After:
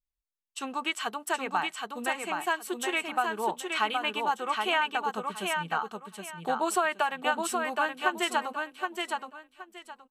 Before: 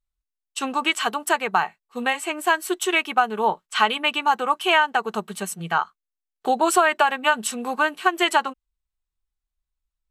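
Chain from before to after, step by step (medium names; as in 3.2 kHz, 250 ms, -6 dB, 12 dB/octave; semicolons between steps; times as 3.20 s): feedback delay 771 ms, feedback 22%, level -4 dB; trim -9 dB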